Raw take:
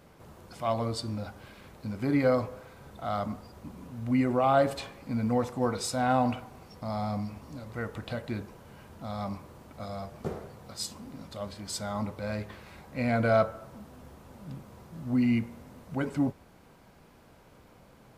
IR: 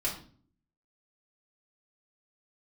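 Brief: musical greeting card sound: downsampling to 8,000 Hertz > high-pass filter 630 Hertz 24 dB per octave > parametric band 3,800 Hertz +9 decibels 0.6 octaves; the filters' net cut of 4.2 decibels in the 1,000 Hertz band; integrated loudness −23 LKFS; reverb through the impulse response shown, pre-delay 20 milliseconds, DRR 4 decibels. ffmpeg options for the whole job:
-filter_complex "[0:a]equalizer=frequency=1000:width_type=o:gain=-5.5,asplit=2[link_01][link_02];[1:a]atrim=start_sample=2205,adelay=20[link_03];[link_02][link_03]afir=irnorm=-1:irlink=0,volume=-9.5dB[link_04];[link_01][link_04]amix=inputs=2:normalize=0,aresample=8000,aresample=44100,highpass=frequency=630:width=0.5412,highpass=frequency=630:width=1.3066,equalizer=frequency=3800:width_type=o:width=0.6:gain=9,volume=14dB"

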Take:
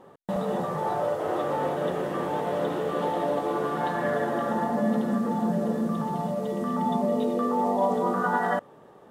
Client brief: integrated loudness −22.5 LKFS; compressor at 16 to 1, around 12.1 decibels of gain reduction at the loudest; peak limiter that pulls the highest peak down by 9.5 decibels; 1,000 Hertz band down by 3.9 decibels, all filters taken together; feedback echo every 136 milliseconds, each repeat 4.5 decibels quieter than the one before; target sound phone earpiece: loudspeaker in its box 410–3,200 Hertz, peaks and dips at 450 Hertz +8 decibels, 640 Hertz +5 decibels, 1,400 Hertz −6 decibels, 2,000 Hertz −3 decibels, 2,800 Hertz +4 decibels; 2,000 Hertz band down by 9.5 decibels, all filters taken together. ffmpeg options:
ffmpeg -i in.wav -af "equalizer=frequency=1000:width_type=o:gain=-5.5,equalizer=frequency=2000:width_type=o:gain=-5.5,acompressor=threshold=-34dB:ratio=16,alimiter=level_in=8dB:limit=-24dB:level=0:latency=1,volume=-8dB,highpass=410,equalizer=frequency=450:width_type=q:width=4:gain=8,equalizer=frequency=640:width_type=q:width=4:gain=5,equalizer=frequency=1400:width_type=q:width=4:gain=-6,equalizer=frequency=2000:width_type=q:width=4:gain=-3,equalizer=frequency=2800:width_type=q:width=4:gain=4,lowpass=frequency=3200:width=0.5412,lowpass=frequency=3200:width=1.3066,aecho=1:1:136|272|408|544|680|816|952|1088|1224:0.596|0.357|0.214|0.129|0.0772|0.0463|0.0278|0.0167|0.01,volume=15dB" out.wav

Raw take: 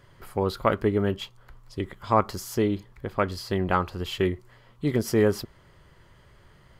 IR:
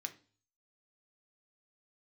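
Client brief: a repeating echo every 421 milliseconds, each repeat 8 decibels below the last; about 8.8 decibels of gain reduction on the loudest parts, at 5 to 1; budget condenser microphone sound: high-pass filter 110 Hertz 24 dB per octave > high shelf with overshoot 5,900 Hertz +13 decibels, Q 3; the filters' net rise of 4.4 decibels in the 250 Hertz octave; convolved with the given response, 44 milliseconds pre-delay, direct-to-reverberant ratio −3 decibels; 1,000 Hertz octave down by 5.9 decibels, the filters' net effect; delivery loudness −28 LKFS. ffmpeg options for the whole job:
-filter_complex "[0:a]equalizer=frequency=250:width_type=o:gain=6.5,equalizer=frequency=1000:width_type=o:gain=-7.5,acompressor=threshold=-25dB:ratio=5,aecho=1:1:421|842|1263|1684|2105:0.398|0.159|0.0637|0.0255|0.0102,asplit=2[link_01][link_02];[1:a]atrim=start_sample=2205,adelay=44[link_03];[link_02][link_03]afir=irnorm=-1:irlink=0,volume=5dB[link_04];[link_01][link_04]amix=inputs=2:normalize=0,highpass=frequency=110:width=0.5412,highpass=frequency=110:width=1.3066,highshelf=frequency=5900:width_type=q:width=3:gain=13,volume=-2.5dB"

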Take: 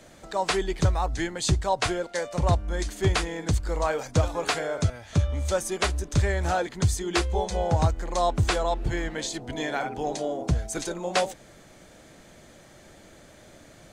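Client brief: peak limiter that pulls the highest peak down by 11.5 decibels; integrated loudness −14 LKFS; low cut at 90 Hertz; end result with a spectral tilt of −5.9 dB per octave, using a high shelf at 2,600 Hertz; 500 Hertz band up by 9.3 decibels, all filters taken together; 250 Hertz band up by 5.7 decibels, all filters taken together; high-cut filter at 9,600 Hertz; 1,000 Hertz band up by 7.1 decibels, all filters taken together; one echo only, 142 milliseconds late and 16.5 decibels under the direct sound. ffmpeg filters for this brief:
ffmpeg -i in.wav -af "highpass=90,lowpass=9600,equalizer=frequency=250:width_type=o:gain=4.5,equalizer=frequency=500:width_type=o:gain=9,equalizer=frequency=1000:width_type=o:gain=6.5,highshelf=frequency=2600:gain=-8.5,alimiter=limit=-15.5dB:level=0:latency=1,aecho=1:1:142:0.15,volume=12dB" out.wav

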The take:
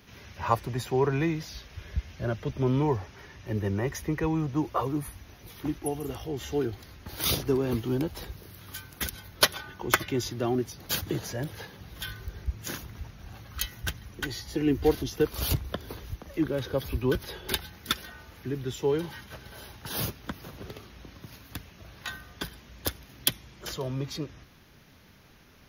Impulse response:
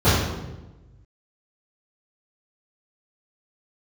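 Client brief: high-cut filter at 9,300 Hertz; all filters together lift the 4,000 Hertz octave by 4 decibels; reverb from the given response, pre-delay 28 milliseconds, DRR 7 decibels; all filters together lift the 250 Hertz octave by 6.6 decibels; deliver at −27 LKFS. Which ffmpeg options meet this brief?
-filter_complex "[0:a]lowpass=9300,equalizer=frequency=250:width_type=o:gain=8.5,equalizer=frequency=4000:width_type=o:gain=5,asplit=2[link_01][link_02];[1:a]atrim=start_sample=2205,adelay=28[link_03];[link_02][link_03]afir=irnorm=-1:irlink=0,volume=-29.5dB[link_04];[link_01][link_04]amix=inputs=2:normalize=0,volume=-2.5dB"

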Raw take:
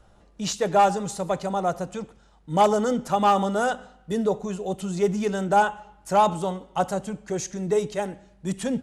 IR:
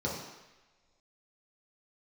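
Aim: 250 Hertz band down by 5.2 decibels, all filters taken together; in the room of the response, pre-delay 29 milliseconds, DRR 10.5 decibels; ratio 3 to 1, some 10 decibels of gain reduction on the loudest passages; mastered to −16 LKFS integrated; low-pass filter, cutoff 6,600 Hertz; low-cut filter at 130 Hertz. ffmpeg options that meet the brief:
-filter_complex "[0:a]highpass=130,lowpass=6600,equalizer=frequency=250:width_type=o:gain=-6.5,acompressor=threshold=-28dB:ratio=3,asplit=2[link_01][link_02];[1:a]atrim=start_sample=2205,adelay=29[link_03];[link_02][link_03]afir=irnorm=-1:irlink=0,volume=-17.5dB[link_04];[link_01][link_04]amix=inputs=2:normalize=0,volume=16dB"

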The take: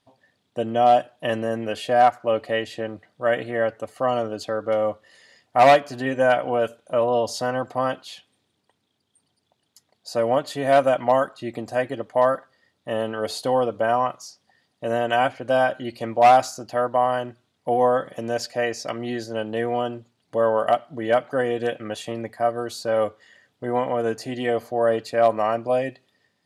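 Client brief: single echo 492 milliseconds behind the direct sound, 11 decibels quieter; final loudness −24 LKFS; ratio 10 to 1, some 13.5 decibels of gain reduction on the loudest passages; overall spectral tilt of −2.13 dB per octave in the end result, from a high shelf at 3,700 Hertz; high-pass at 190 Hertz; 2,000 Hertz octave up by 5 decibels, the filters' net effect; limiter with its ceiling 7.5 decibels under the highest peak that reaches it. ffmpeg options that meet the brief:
ffmpeg -i in.wav -af "highpass=190,equalizer=frequency=2000:width_type=o:gain=7.5,highshelf=frequency=3700:gain=-4,acompressor=threshold=-22dB:ratio=10,alimiter=limit=-18.5dB:level=0:latency=1,aecho=1:1:492:0.282,volume=6dB" out.wav

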